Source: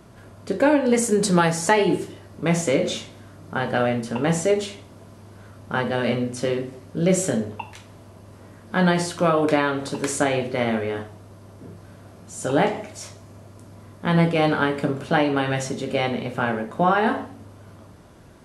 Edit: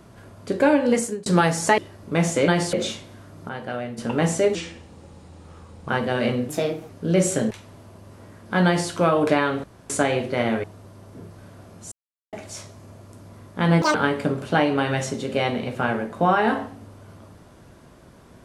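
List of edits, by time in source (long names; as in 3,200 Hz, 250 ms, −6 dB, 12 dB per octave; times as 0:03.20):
0:00.90–0:01.26: fade out
0:01.78–0:02.09: remove
0:03.55–0:04.04: clip gain −8.5 dB
0:04.61–0:05.72: play speed 83%
0:06.32–0:06.82: play speed 122%
0:07.43–0:07.72: remove
0:08.87–0:09.12: duplicate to 0:02.79
0:09.85–0:10.11: fill with room tone
0:10.85–0:11.10: remove
0:12.38–0:12.79: silence
0:14.28–0:14.53: play speed 197%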